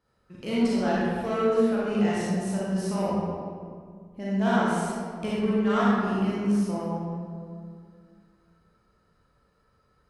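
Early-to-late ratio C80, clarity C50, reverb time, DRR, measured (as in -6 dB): -1.0 dB, -4.5 dB, 2.1 s, -8.0 dB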